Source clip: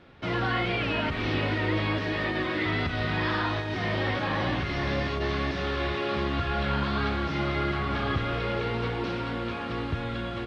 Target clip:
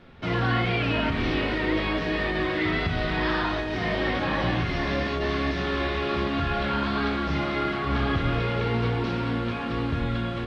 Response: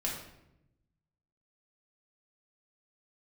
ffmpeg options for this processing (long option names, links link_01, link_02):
-filter_complex "[0:a]asplit=2[link_01][link_02];[1:a]atrim=start_sample=2205,afade=type=out:start_time=0.19:duration=0.01,atrim=end_sample=8820,lowshelf=frequency=160:gain=9.5[link_03];[link_02][link_03]afir=irnorm=-1:irlink=0,volume=-8dB[link_04];[link_01][link_04]amix=inputs=2:normalize=0,volume=-1.5dB"